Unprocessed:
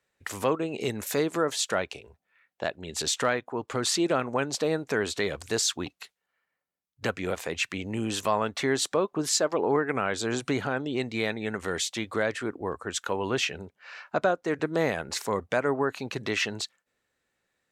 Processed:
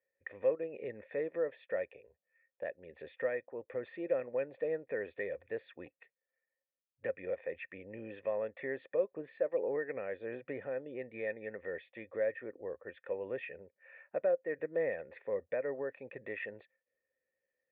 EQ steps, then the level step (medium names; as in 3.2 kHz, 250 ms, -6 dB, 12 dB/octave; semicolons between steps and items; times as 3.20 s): cascade formant filter e; 0.0 dB